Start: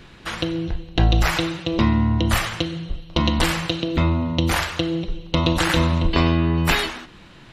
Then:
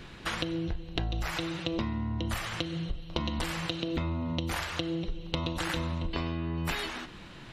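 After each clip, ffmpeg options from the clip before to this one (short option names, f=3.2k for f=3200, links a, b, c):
-af "acompressor=threshold=-27dB:ratio=10,volume=-1.5dB"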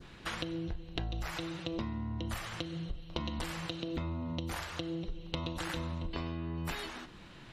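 -af "adynamicequalizer=threshold=0.00316:dfrequency=2500:dqfactor=0.98:tfrequency=2500:tqfactor=0.98:attack=5:release=100:ratio=0.375:range=1.5:mode=cutabove:tftype=bell,volume=-5dB"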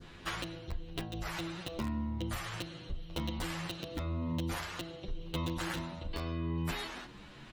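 -filter_complex "[0:a]asplit=2[a][b];[b]aeval=exprs='(mod(22.4*val(0)+1,2)-1)/22.4':c=same,volume=-5.5dB[c];[a][c]amix=inputs=2:normalize=0,asplit=2[d][e];[e]adelay=9.6,afreqshift=0.92[f];[d][f]amix=inputs=2:normalize=1"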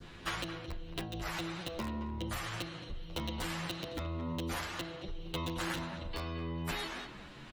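-filter_complex "[0:a]acrossover=split=380|520|3000[a][b][c][d];[a]asoftclip=type=tanh:threshold=-36.5dB[e];[e][b][c][d]amix=inputs=4:normalize=0,asplit=2[f][g];[g]adelay=220,highpass=300,lowpass=3.4k,asoftclip=type=hard:threshold=-31dB,volume=-10dB[h];[f][h]amix=inputs=2:normalize=0,volume=1dB"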